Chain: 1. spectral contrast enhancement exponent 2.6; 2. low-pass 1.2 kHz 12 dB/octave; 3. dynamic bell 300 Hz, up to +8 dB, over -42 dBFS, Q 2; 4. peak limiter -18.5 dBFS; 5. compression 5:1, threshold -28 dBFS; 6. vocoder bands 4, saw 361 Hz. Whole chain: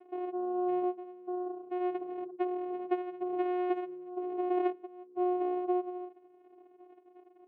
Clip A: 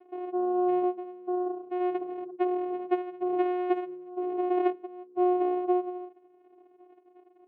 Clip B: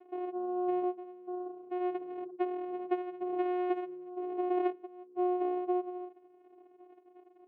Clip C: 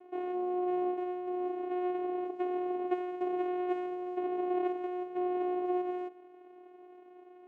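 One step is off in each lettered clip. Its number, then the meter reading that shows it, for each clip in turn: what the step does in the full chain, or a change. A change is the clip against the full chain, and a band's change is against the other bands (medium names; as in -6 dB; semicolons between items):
5, mean gain reduction 3.0 dB; 3, momentary loudness spread change +1 LU; 1, momentary loudness spread change -5 LU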